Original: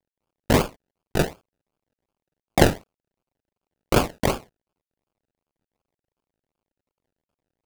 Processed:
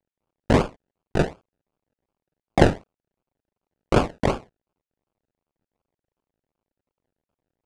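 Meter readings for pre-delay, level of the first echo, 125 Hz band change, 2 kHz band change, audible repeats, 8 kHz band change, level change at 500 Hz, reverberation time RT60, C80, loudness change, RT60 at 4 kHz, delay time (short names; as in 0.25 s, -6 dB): none, none, +1.0 dB, -1.5 dB, none, -9.0 dB, +1.0 dB, none, none, 0.0 dB, none, none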